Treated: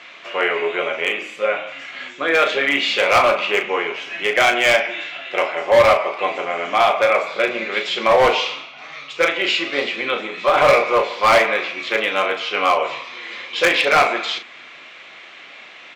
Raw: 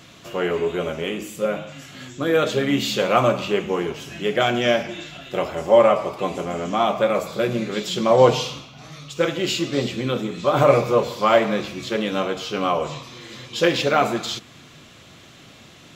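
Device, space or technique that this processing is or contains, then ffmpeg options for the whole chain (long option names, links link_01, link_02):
megaphone: -filter_complex "[0:a]highpass=610,lowpass=3300,equalizer=frequency=2200:width_type=o:width=0.58:gain=9,asoftclip=type=hard:threshold=-15dB,asplit=2[link_01][link_02];[link_02]adelay=36,volume=-8.5dB[link_03];[link_01][link_03]amix=inputs=2:normalize=0,volume=6dB"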